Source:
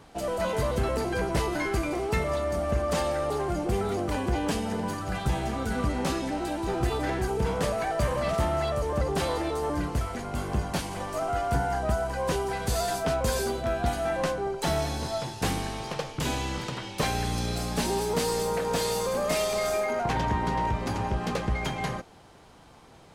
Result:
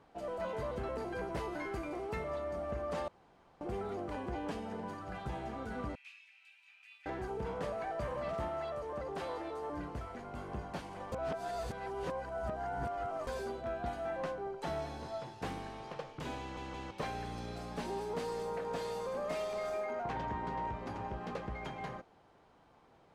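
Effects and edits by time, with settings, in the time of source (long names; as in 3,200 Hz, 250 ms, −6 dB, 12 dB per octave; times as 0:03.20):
0:01.00–0:02.22: high-shelf EQ 9,400 Hz +7 dB
0:03.08–0:03.61: fill with room tone
0:05.95–0:07.06: four-pole ladder high-pass 2,400 Hz, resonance 85%
0:08.48–0:09.73: low-shelf EQ 210 Hz −7.5 dB
0:11.12–0:13.27: reverse
0:16.40: stutter in place 0.17 s, 3 plays
whole clip: low-pass filter 1,400 Hz 6 dB per octave; low-shelf EQ 250 Hz −8.5 dB; level −7.5 dB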